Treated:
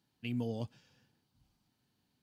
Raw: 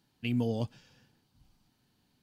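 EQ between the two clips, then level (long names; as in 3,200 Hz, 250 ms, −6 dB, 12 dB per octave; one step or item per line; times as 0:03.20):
high-pass filter 44 Hz
−6.0 dB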